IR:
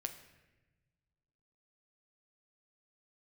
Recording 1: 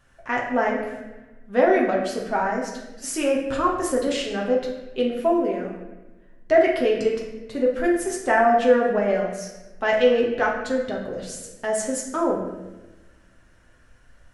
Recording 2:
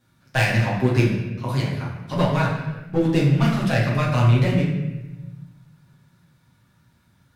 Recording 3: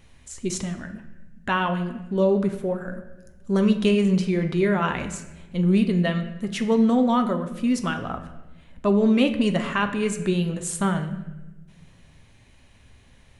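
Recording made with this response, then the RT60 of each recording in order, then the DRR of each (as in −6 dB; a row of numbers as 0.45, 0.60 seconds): 3; 1.1, 1.1, 1.1 seconds; −3.0, −7.0, 6.0 decibels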